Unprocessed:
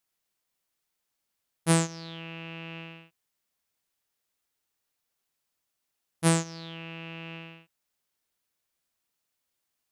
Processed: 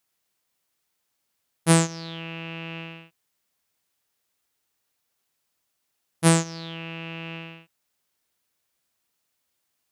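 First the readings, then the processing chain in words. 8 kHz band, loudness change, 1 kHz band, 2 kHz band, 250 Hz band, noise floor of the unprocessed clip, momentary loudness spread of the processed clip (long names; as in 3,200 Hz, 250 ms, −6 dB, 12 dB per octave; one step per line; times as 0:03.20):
+5.0 dB, +5.0 dB, +5.0 dB, +5.0 dB, +5.0 dB, −82 dBFS, 17 LU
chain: high-pass filter 42 Hz
level +5 dB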